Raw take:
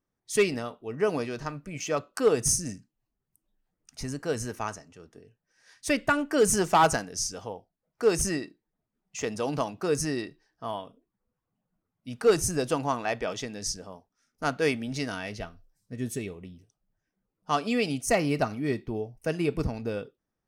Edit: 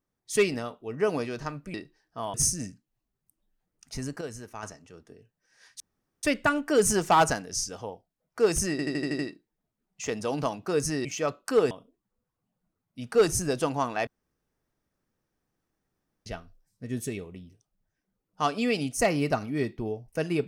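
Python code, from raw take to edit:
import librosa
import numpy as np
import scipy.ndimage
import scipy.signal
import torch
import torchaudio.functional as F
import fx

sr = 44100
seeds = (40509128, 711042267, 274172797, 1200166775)

y = fx.edit(x, sr, fx.swap(start_s=1.74, length_s=0.66, other_s=10.2, other_length_s=0.6),
    fx.clip_gain(start_s=4.27, length_s=0.42, db=-8.0),
    fx.insert_room_tone(at_s=5.86, length_s=0.43),
    fx.stutter(start_s=8.34, slice_s=0.08, count=7),
    fx.room_tone_fill(start_s=13.16, length_s=2.19), tone=tone)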